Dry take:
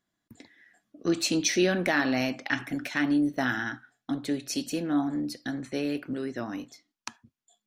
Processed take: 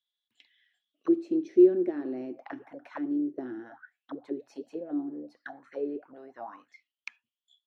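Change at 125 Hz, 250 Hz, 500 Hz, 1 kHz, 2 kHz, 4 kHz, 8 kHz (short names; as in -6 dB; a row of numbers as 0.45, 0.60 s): -17.5 dB, -1.5 dB, +3.5 dB, -10.0 dB, -18.0 dB, under -25 dB, under -30 dB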